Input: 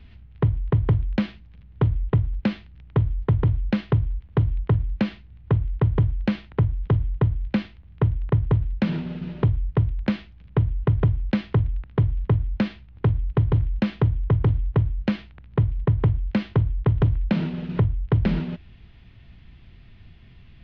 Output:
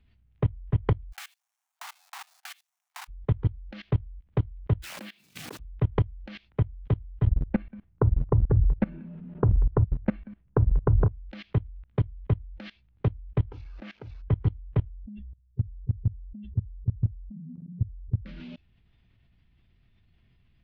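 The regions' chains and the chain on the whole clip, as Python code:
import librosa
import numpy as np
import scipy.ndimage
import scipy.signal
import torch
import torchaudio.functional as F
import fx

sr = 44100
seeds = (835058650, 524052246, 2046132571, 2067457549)

y = fx.chain(x, sr, fx.block_float(bits=3),
    fx.steep_highpass(hz=700.0, slope=72),
    fx.upward_expand(threshold_db=-47.0, expansion=1.5), at=(1.12, 3.09))
y = fx.chain(y, sr, fx.block_float(bits=5),
    fx.highpass(hz=180.0, slope=24),
    fx.pre_swell(db_per_s=91.0), at=(4.82, 5.6))
y = fx.chain(y, sr, fx.lowpass(hz=1500.0, slope=12),
    fx.low_shelf(hz=400.0, db=4.0),
    fx.echo_single(ms=189, db=-10.5), at=(7.27, 11.11))
y = fx.chain(y, sr, fx.delta_mod(bps=32000, step_db=-35.5),
    fx.lowpass(hz=2800.0, slope=12),
    fx.low_shelf(hz=82.0, db=-9.0), at=(13.52, 14.22))
y = fx.chain(y, sr, fx.spec_expand(power=2.9),
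    fx.peak_eq(hz=1600.0, db=-13.5, octaves=1.8),
    fx.sustainer(db_per_s=73.0), at=(14.89, 18.26))
y = fx.noise_reduce_blind(y, sr, reduce_db=11)
y = fx.dynamic_eq(y, sr, hz=170.0, q=0.77, threshold_db=-33.0, ratio=4.0, max_db=-8)
y = fx.level_steps(y, sr, step_db=22)
y = y * librosa.db_to_amplitude(3.0)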